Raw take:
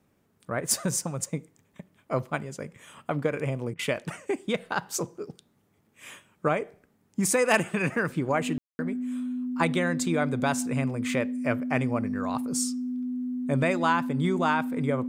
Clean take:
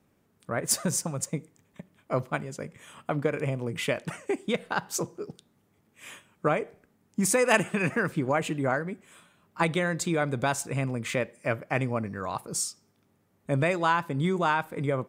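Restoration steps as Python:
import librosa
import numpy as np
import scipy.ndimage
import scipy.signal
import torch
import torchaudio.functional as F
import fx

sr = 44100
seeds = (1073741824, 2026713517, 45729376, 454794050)

y = fx.fix_declip(x, sr, threshold_db=-9.5)
y = fx.notch(y, sr, hz=250.0, q=30.0)
y = fx.fix_ambience(y, sr, seeds[0], print_start_s=5.46, print_end_s=5.96, start_s=8.58, end_s=8.79)
y = fx.fix_interpolate(y, sr, at_s=(3.74,), length_ms=50.0)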